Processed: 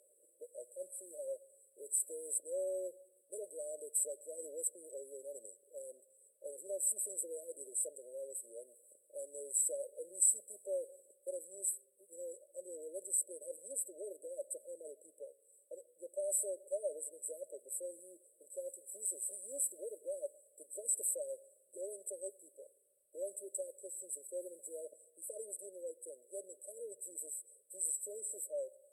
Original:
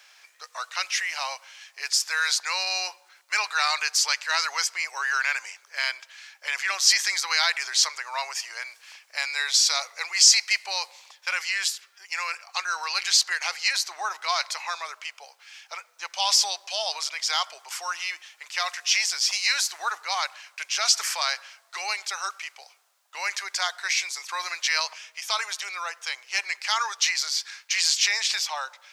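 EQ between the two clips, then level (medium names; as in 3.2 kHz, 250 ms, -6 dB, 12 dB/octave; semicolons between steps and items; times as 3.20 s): brick-wall FIR band-stop 610–7700 Hz; distance through air 54 m; +7.0 dB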